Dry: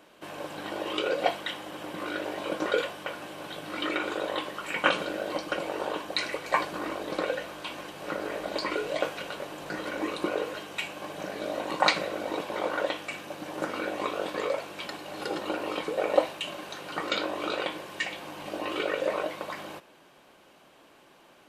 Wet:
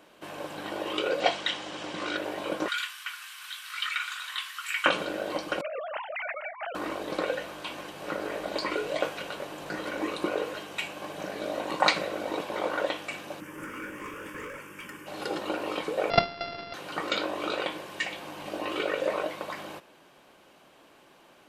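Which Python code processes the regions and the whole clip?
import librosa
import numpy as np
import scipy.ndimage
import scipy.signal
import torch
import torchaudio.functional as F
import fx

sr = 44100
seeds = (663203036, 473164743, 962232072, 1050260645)

y = fx.chain(x, sr, fx.lowpass(hz=6900.0, slope=24),
    fx.high_shelf(hz=3000.0, db=10.5), at=(1.2, 2.17))
y = fx.chain(y, sr, fx.steep_highpass(hz=1200.0, slope=36),
    fx.tilt_eq(slope=2.0), at=(2.68, 4.86))
y = fx.chain(y, sr, fx.sine_speech(),
    fx.over_compress(threshold_db=-36.0, ratio=-1.0), at=(5.61, 6.75))
y = fx.chain(y, sr, fx.high_shelf(hz=12000.0, db=3.5),
    fx.overload_stage(gain_db=31.5),
    fx.fixed_phaser(hz=1700.0, stages=4), at=(13.4, 15.07))
y = fx.chain(y, sr, fx.sample_sort(block=64),
    fx.resample_bad(factor=4, down='none', up='filtered'), at=(16.1, 16.74))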